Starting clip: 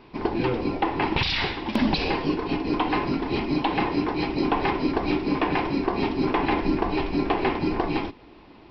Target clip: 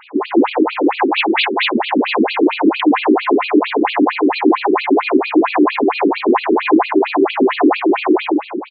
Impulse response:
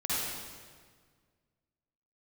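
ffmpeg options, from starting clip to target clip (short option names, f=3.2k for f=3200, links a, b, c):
-filter_complex "[0:a]acrusher=bits=4:mode=log:mix=0:aa=0.000001,lowshelf=f=400:g=6.5,asplit=2[a][b];[b]adelay=166,lowpass=f=1k:p=1,volume=-10dB,asplit=2[c][d];[d]adelay=166,lowpass=f=1k:p=1,volume=0.53,asplit=2[e][f];[f]adelay=166,lowpass=f=1k:p=1,volume=0.53,asplit=2[g][h];[h]adelay=166,lowpass=f=1k:p=1,volume=0.53,asplit=2[i][j];[j]adelay=166,lowpass=f=1k:p=1,volume=0.53,asplit=2[k][l];[l]adelay=166,lowpass=f=1k:p=1,volume=0.53[m];[a][c][e][g][i][k][m]amix=inputs=7:normalize=0,asplit=2[n][o];[1:a]atrim=start_sample=2205,adelay=96[p];[o][p]afir=irnorm=-1:irlink=0,volume=-9.5dB[q];[n][q]amix=inputs=2:normalize=0,flanger=delay=8.5:depth=7.3:regen=79:speed=0.73:shape=triangular,bass=f=250:g=-15,treble=f=4k:g=-9,alimiter=level_in=22dB:limit=-1dB:release=50:level=0:latency=1,afftfilt=real='re*between(b*sr/1024,280*pow(3400/280,0.5+0.5*sin(2*PI*4.4*pts/sr))/1.41,280*pow(3400/280,0.5+0.5*sin(2*PI*4.4*pts/sr))*1.41)':imag='im*between(b*sr/1024,280*pow(3400/280,0.5+0.5*sin(2*PI*4.4*pts/sr))/1.41,280*pow(3400/280,0.5+0.5*sin(2*PI*4.4*pts/sr))*1.41)':win_size=1024:overlap=0.75,volume=1.5dB"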